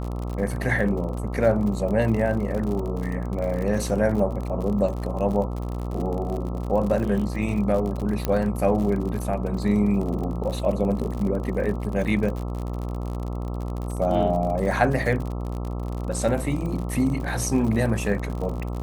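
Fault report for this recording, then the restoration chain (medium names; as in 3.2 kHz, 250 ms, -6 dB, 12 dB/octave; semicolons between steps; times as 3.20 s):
buzz 60 Hz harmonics 22 -29 dBFS
crackle 58 per s -30 dBFS
8.25 s: pop -10 dBFS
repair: de-click; de-hum 60 Hz, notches 22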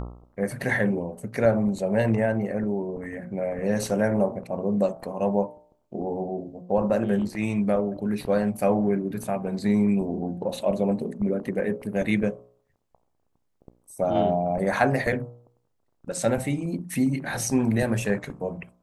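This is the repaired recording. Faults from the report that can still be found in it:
nothing left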